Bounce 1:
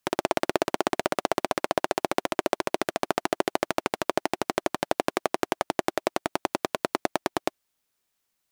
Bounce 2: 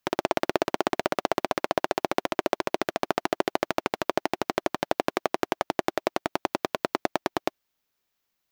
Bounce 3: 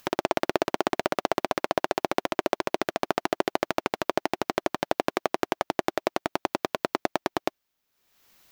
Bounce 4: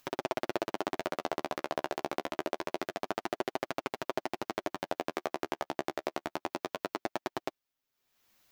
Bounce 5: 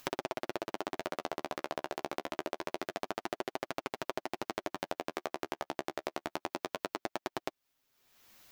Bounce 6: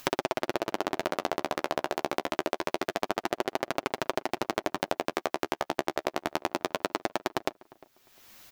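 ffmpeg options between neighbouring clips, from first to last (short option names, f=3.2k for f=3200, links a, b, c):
-af "equalizer=f=9.1k:t=o:w=0.63:g=-9"
-af "acompressor=mode=upward:threshold=-42dB:ratio=2.5"
-af "flanger=delay=7.3:depth=6.5:regen=-12:speed=0.26:shape=sinusoidal,volume=-5dB"
-af "acompressor=threshold=-40dB:ratio=12,volume=8.5dB"
-filter_complex "[0:a]asplit=2[a][b];[b]adelay=352,lowpass=f=1.4k:p=1,volume=-21.5dB,asplit=2[c][d];[d]adelay=352,lowpass=f=1.4k:p=1,volume=0.25[e];[a][c][e]amix=inputs=3:normalize=0,volume=7.5dB"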